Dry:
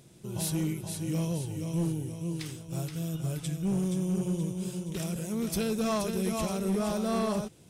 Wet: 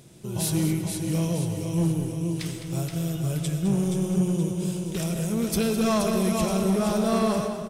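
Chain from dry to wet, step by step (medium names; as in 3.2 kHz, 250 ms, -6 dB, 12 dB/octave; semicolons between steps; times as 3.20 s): delay 209 ms -11 dB; on a send at -8 dB: reverberation RT60 1.7 s, pre-delay 65 ms; on the sum: trim +5 dB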